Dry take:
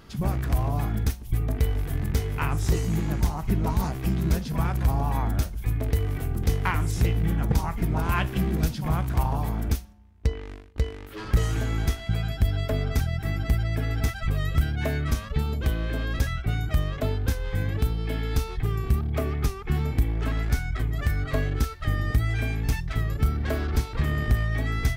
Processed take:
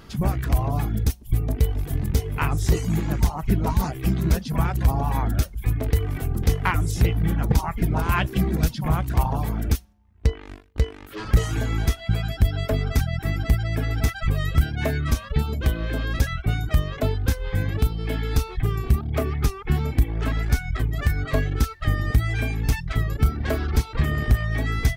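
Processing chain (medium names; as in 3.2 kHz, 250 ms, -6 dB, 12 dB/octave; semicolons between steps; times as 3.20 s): reverb removal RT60 0.56 s; 0.82–2.37 s: dynamic bell 1.6 kHz, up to -6 dB, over -52 dBFS, Q 0.85; trim +4 dB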